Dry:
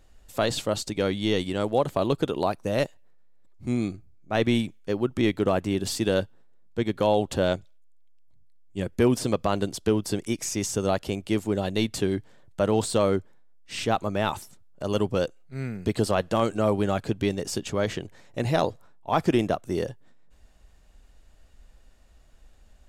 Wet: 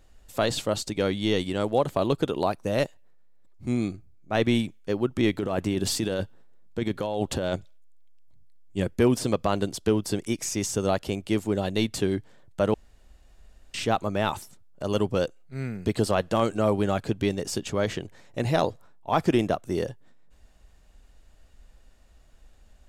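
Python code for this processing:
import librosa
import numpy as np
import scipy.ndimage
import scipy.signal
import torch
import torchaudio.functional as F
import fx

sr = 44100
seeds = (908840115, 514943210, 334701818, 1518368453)

y = fx.over_compress(x, sr, threshold_db=-26.0, ratio=-1.0, at=(5.32, 8.93))
y = fx.edit(y, sr, fx.room_tone_fill(start_s=12.74, length_s=1.0), tone=tone)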